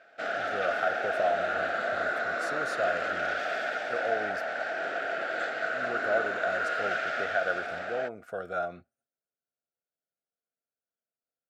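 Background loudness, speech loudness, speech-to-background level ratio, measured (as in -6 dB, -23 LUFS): -31.0 LUFS, -34.0 LUFS, -3.0 dB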